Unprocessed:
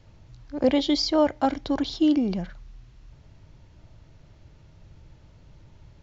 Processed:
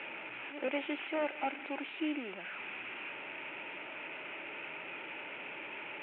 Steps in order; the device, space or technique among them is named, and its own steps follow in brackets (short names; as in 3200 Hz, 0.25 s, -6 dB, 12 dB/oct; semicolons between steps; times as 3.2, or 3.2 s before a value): digital answering machine (BPF 370–3000 Hz; delta modulation 16 kbps, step -32 dBFS; speaker cabinet 430–3000 Hz, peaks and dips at 490 Hz -7 dB, 690 Hz -8 dB, 1100 Hz -9 dB, 1700 Hz -4 dB, 2500 Hz +9 dB); gain -3 dB